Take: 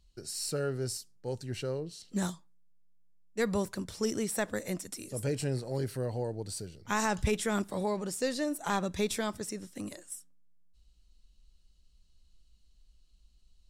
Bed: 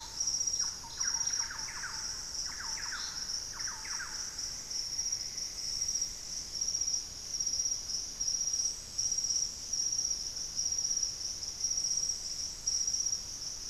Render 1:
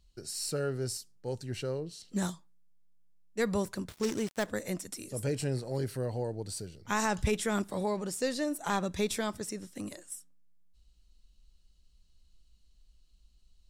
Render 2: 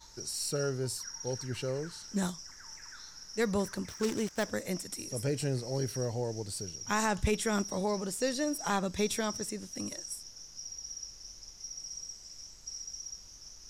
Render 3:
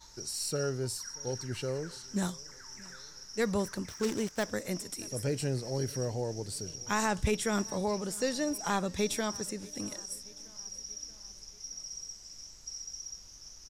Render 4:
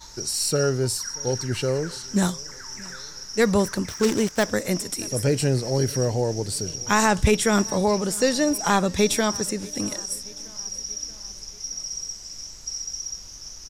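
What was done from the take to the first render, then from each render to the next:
3.88–4.47 s: dead-time distortion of 0.11 ms
add bed -10.5 dB
feedback delay 632 ms, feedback 56%, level -23 dB
trim +10.5 dB

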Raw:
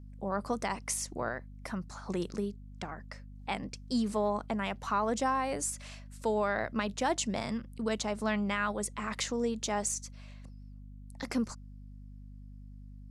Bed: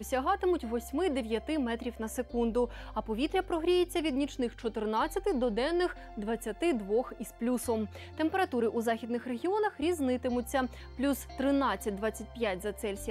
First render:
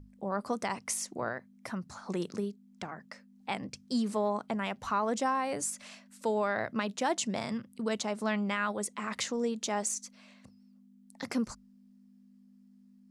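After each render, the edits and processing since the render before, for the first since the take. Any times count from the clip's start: hum notches 50/100/150 Hz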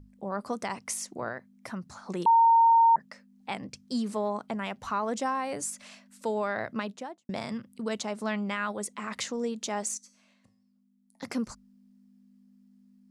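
2.26–2.96 s: bleep 918 Hz -16 dBFS; 6.74–7.29 s: studio fade out; 9.97–11.22 s: feedback comb 110 Hz, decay 0.62 s, mix 70%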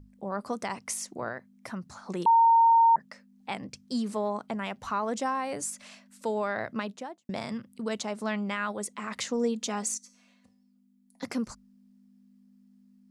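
9.31–11.25 s: comb 4.1 ms, depth 64%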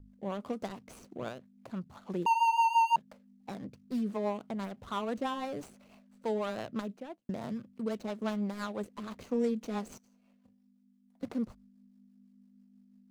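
median filter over 25 samples; rotary cabinet horn 6 Hz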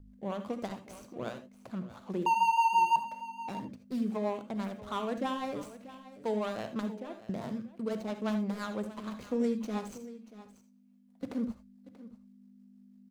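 delay 635 ms -16 dB; gated-style reverb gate 100 ms rising, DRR 9 dB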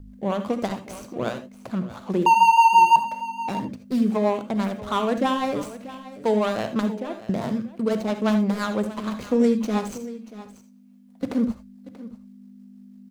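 trim +11 dB

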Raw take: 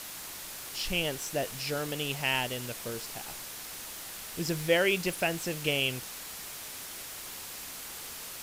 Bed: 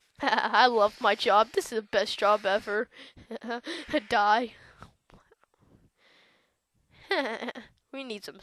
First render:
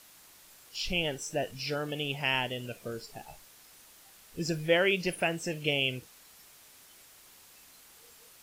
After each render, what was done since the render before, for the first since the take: noise print and reduce 14 dB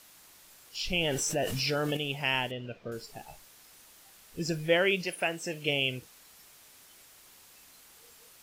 0.93–1.97 s: level flattener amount 70%; 2.51–2.92 s: distance through air 230 m; 5.03–5.68 s: high-pass 580 Hz -> 150 Hz 6 dB/octave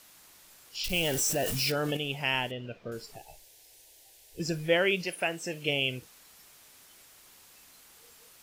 0.84–1.72 s: zero-crossing glitches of -28 dBFS; 3.16–4.40 s: static phaser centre 510 Hz, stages 4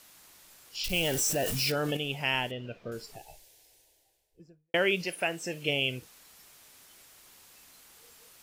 3.23–4.74 s: studio fade out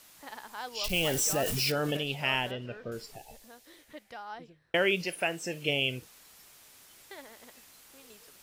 add bed -19.5 dB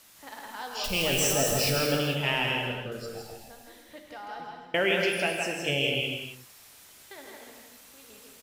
delay 162 ms -4.5 dB; gated-style reverb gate 310 ms flat, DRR 2.5 dB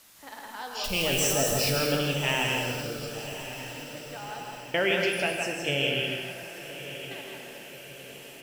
echo that smears into a reverb 1118 ms, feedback 51%, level -12 dB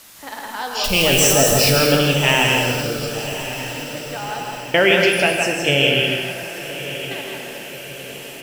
trim +11 dB

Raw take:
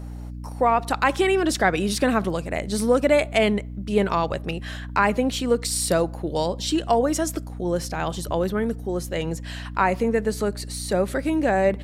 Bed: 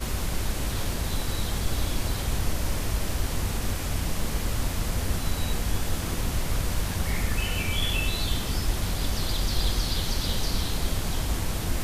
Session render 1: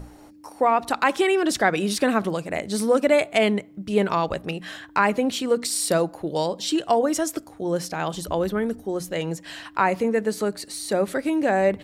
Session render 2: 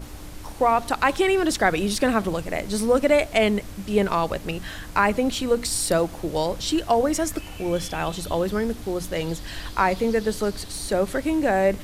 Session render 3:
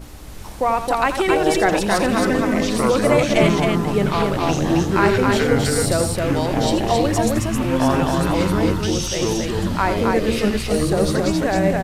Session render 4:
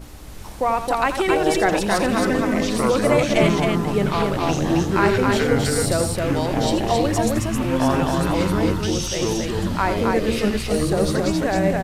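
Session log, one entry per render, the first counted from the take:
hum notches 60/120/180/240 Hz
add bed -11 dB
ever faster or slower copies 366 ms, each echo -7 st, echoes 3; loudspeakers at several distances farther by 29 m -10 dB, 92 m -3 dB
trim -1.5 dB

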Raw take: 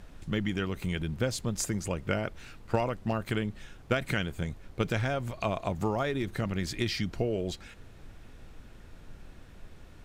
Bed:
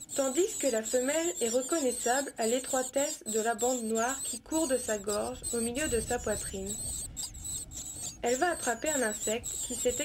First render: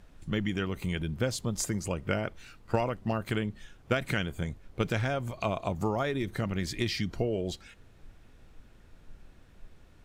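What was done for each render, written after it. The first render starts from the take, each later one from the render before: noise print and reduce 6 dB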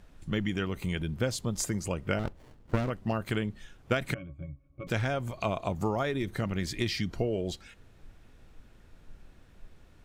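2.19–2.90 s: sliding maximum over 33 samples; 4.14–4.87 s: pitch-class resonator C#, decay 0.12 s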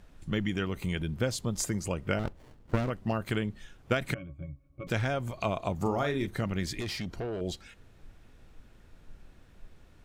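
5.81–6.27 s: doubling 41 ms -8 dB; 6.80–7.41 s: valve stage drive 30 dB, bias 0.35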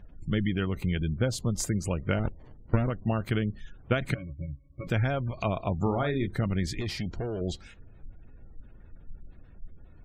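spectral gate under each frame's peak -30 dB strong; bass shelf 180 Hz +7 dB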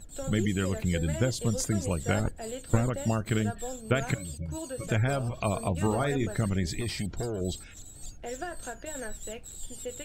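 add bed -8.5 dB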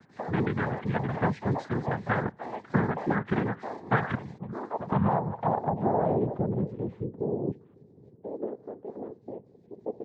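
noise-vocoded speech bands 6; low-pass sweep 1.6 kHz -> 430 Hz, 3.99–7.28 s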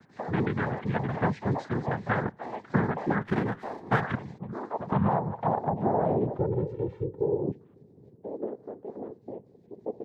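3.21–4.01 s: sliding maximum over 3 samples; 6.38–7.44 s: comb 2.2 ms, depth 78%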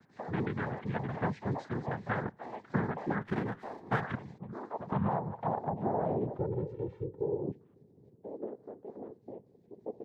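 trim -6 dB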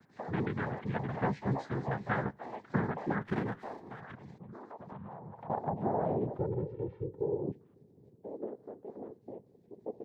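1.16–2.39 s: doubling 15 ms -5 dB; 3.88–5.50 s: compression 5:1, threshold -44 dBFS; 6.54–7.05 s: distance through air 170 m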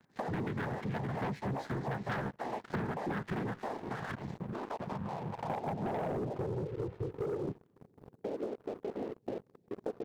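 waveshaping leveller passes 3; compression 5:1, threshold -35 dBFS, peak gain reduction 12.5 dB

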